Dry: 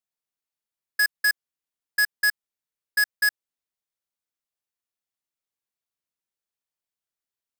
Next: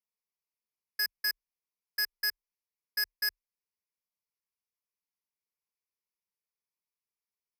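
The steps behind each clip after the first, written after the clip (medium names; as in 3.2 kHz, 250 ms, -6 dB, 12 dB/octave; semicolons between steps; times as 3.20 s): rippled EQ curve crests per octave 0.84, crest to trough 13 dB; trim -8.5 dB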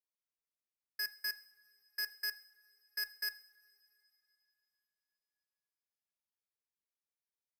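two-slope reverb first 0.5 s, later 3.6 s, from -18 dB, DRR 12.5 dB; trim -7.5 dB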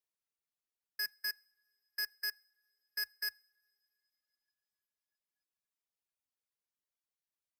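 reverb removal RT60 1.5 s; trim +1 dB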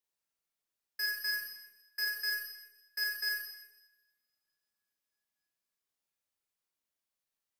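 Schroeder reverb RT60 0.96 s, combs from 28 ms, DRR -1.5 dB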